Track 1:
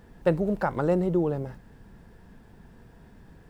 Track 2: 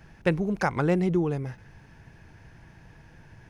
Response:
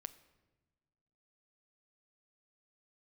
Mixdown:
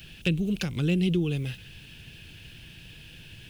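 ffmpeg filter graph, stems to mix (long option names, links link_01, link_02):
-filter_complex "[0:a]acompressor=threshold=-27dB:ratio=6,volume=-15dB[link_01];[1:a]highshelf=frequency=4100:width_type=q:width=3:gain=-13.5,acrossover=split=340[link_02][link_03];[link_03]acompressor=threshold=-34dB:ratio=6[link_04];[link_02][link_04]amix=inputs=2:normalize=0,volume=2dB[link_05];[link_01][link_05]amix=inputs=2:normalize=0,equalizer=frequency=900:width=1.3:gain=-12.5,aexciter=amount=12.2:drive=6.4:freq=3100"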